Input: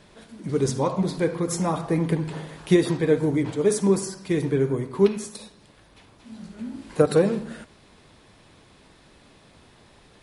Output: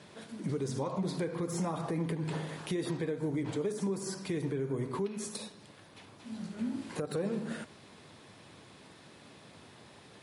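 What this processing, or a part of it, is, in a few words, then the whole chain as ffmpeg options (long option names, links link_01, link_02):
podcast mastering chain: -af "highpass=frequency=92:width=0.5412,highpass=frequency=92:width=1.3066,deesser=0.6,acompressor=threshold=-27dB:ratio=2.5,alimiter=level_in=0.5dB:limit=-24dB:level=0:latency=1:release=169,volume=-0.5dB" -ar 44100 -c:a libmp3lame -b:a 96k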